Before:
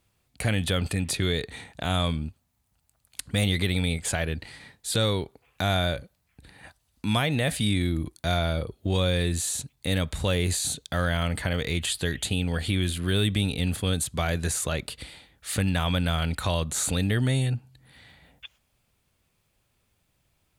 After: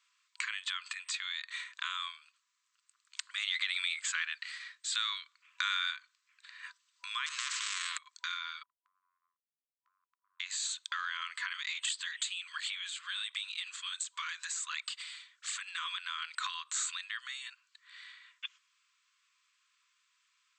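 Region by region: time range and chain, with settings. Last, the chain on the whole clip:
0:03.36–0:05.91: Butterworth high-pass 1,100 Hz + noise that follows the level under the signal 33 dB
0:07.26–0:07.98: leveller curve on the samples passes 1 + every bin compressed towards the loudest bin 10 to 1
0:08.63–0:10.40: Butterworth low-pass 520 Hz 96 dB per octave + downward compressor 1.5 to 1, threshold −32 dBFS
0:11.54–0:15.98: parametric band 13,000 Hz +9 dB 1.5 octaves + through-zero flanger with one copy inverted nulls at 1.4 Hz, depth 7.9 ms
whole clip: downward compressor, threshold −30 dBFS; dynamic equaliser 5,500 Hz, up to −5 dB, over −51 dBFS, Q 2; brick-wall band-pass 990–8,200 Hz; level +2.5 dB

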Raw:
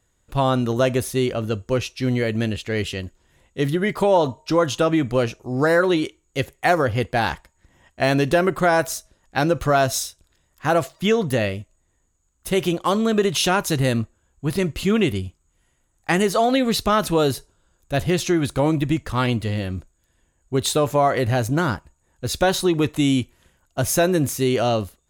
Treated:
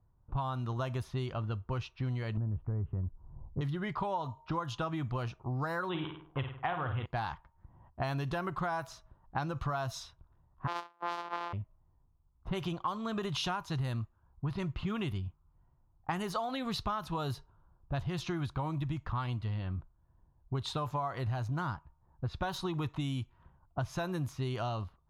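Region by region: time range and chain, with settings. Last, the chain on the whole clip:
0:02.37–0:03.61: low-pass filter 1,200 Hz 24 dB per octave + spectral tilt −3 dB per octave + downward compressor 2 to 1, threshold −19 dBFS
0:05.89–0:07.06: high-shelf EQ 6,700 Hz +10.5 dB + flutter between parallel walls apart 8.9 metres, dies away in 0.43 s + bad sample-rate conversion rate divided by 6×, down none, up filtered
0:10.67–0:11.53: samples sorted by size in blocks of 256 samples + high-pass filter 380 Hz 24 dB per octave
whole clip: low-pass that shuts in the quiet parts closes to 640 Hz, open at −14.5 dBFS; octave-band graphic EQ 125/250/500/1,000/2,000/8,000 Hz +5/−6/−11/+9/−7/−11 dB; downward compressor 6 to 1, threshold −33 dBFS

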